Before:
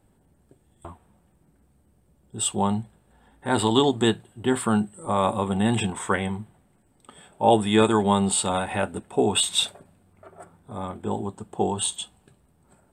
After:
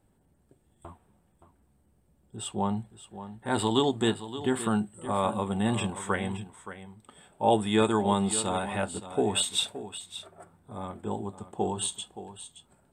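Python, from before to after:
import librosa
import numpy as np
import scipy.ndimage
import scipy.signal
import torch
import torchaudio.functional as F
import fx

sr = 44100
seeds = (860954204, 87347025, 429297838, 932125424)

y = fx.high_shelf(x, sr, hz=4100.0, db=-10.0, at=(2.36, 2.77))
y = y + 10.0 ** (-13.0 / 20.0) * np.pad(y, (int(572 * sr / 1000.0), 0))[:len(y)]
y = y * 10.0 ** (-5.0 / 20.0)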